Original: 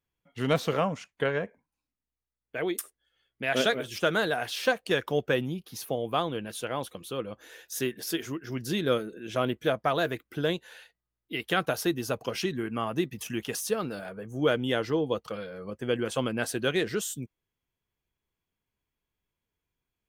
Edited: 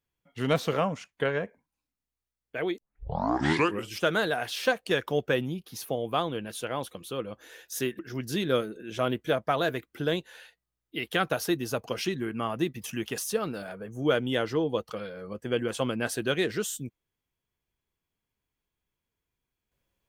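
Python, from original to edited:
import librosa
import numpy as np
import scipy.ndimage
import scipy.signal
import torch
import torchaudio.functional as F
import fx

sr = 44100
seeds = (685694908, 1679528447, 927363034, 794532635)

y = fx.edit(x, sr, fx.tape_start(start_s=2.78, length_s=1.21),
    fx.cut(start_s=7.99, length_s=0.37), tone=tone)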